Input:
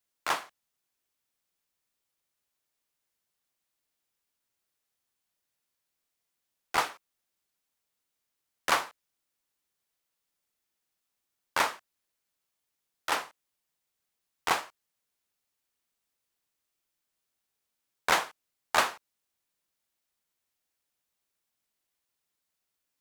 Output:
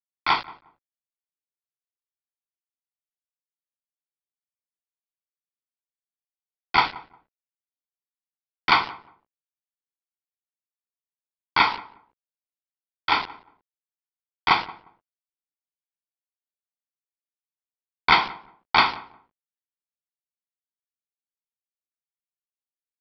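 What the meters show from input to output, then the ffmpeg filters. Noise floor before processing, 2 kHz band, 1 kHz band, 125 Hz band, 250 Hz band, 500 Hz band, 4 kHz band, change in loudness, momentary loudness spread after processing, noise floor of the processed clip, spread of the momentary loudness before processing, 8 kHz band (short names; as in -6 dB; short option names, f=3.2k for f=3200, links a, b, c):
-84 dBFS, +7.5 dB, +8.5 dB, +12.0 dB, +9.0 dB, +0.5 dB, +9.0 dB, +8.0 dB, 15 LU, under -85 dBFS, 15 LU, under -15 dB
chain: -filter_complex "[0:a]bandreject=f=1.2k:w=6.4,aecho=1:1:0.9:1,bandreject=f=57.41:t=h:w=4,bandreject=f=114.82:t=h:w=4,bandreject=f=172.23:t=h:w=4,bandreject=f=229.64:t=h:w=4,bandreject=f=287.05:t=h:w=4,bandreject=f=344.46:t=h:w=4,bandreject=f=401.87:t=h:w=4,bandreject=f=459.28:t=h:w=4,bandreject=f=516.69:t=h:w=4,bandreject=f=574.1:t=h:w=4,bandreject=f=631.51:t=h:w=4,bandreject=f=688.92:t=h:w=4,bandreject=f=746.33:t=h:w=4,bandreject=f=803.74:t=h:w=4,bandreject=f=861.15:t=h:w=4,bandreject=f=918.56:t=h:w=4,bandreject=f=975.97:t=h:w=4,bandreject=f=1.03338k:t=h:w=4,bandreject=f=1.09079k:t=h:w=4,bandreject=f=1.1482k:t=h:w=4,bandreject=f=1.20561k:t=h:w=4,acrusher=bits=5:mix=0:aa=0.000001,asplit=2[a][b];[b]adelay=178,lowpass=f=1k:p=1,volume=-17dB,asplit=2[c][d];[d]adelay=178,lowpass=f=1k:p=1,volume=0.23[e];[c][e]amix=inputs=2:normalize=0[f];[a][f]amix=inputs=2:normalize=0,aresample=11025,aresample=44100,volume=6.5dB"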